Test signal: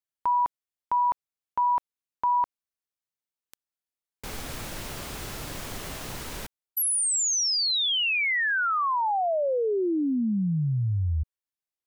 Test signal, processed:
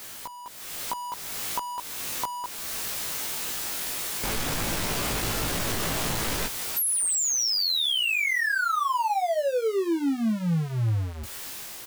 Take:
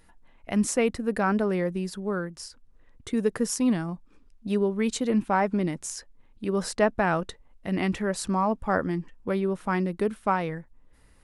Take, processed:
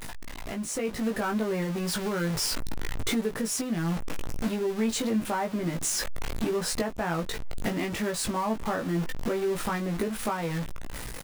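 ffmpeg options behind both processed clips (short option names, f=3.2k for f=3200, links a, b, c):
-filter_complex "[0:a]aeval=exprs='val(0)+0.5*0.0447*sgn(val(0))':c=same,acompressor=threshold=-29dB:ratio=10:attack=7.8:release=391:knee=6:detection=rms,asplit=2[a][b];[b]adelay=18,volume=-3.5dB[c];[a][c]amix=inputs=2:normalize=0,dynaudnorm=f=110:g=13:m=9dB,equalizer=f=63:t=o:w=0.34:g=-7,volume=-5.5dB"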